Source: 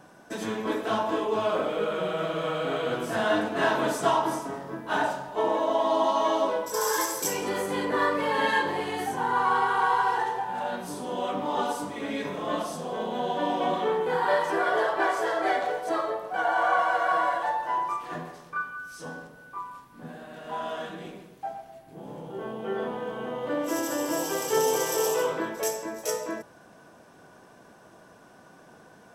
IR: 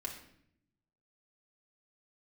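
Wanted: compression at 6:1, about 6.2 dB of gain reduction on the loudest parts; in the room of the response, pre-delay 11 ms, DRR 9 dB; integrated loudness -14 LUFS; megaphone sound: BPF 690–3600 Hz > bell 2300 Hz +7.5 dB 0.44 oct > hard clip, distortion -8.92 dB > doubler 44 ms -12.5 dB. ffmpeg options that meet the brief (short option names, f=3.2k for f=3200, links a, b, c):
-filter_complex "[0:a]acompressor=threshold=-26dB:ratio=6,asplit=2[a][b];[1:a]atrim=start_sample=2205,adelay=11[c];[b][c]afir=irnorm=-1:irlink=0,volume=-8.5dB[d];[a][d]amix=inputs=2:normalize=0,highpass=690,lowpass=3.6k,equalizer=f=2.3k:t=o:w=0.44:g=7.5,asoftclip=type=hard:threshold=-32.5dB,asplit=2[e][f];[f]adelay=44,volume=-12.5dB[g];[e][g]amix=inputs=2:normalize=0,volume=21.5dB"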